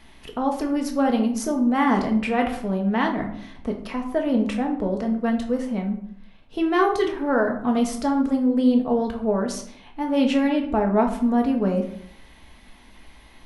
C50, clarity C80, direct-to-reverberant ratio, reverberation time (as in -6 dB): 8.5 dB, 12.0 dB, 2.0 dB, 0.65 s